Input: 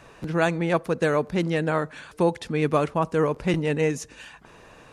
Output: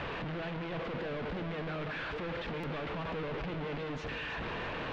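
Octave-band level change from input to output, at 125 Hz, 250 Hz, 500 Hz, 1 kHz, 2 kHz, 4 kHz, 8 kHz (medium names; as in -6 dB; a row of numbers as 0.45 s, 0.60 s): -12.0 dB, -13.5 dB, -14.5 dB, -11.5 dB, -7.5 dB, -5.0 dB, under -20 dB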